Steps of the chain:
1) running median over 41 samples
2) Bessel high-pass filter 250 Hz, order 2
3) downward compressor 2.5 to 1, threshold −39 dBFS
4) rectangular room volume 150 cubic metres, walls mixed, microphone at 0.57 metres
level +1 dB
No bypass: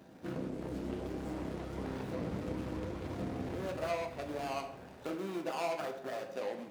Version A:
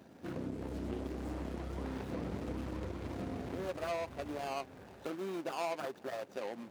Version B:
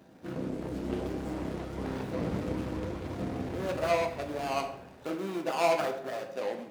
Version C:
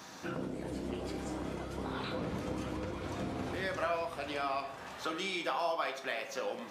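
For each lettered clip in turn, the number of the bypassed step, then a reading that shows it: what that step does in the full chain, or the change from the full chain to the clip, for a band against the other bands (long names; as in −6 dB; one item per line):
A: 4, echo-to-direct ratio −4.5 dB to none audible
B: 3, average gain reduction 4.0 dB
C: 1, 4 kHz band +5.5 dB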